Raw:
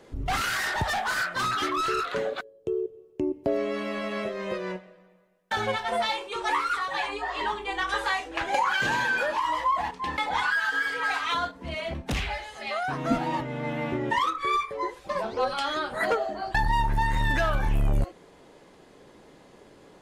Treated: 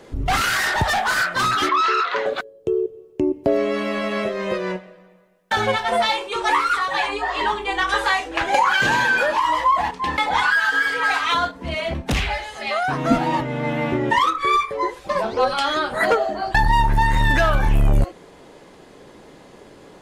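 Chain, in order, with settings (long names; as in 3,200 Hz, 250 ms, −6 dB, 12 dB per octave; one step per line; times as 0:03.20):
0:01.69–0:02.26: loudspeaker in its box 470–5,600 Hz, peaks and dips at 620 Hz −4 dB, 980 Hz +8 dB, 2,000 Hz +4 dB
level +7.5 dB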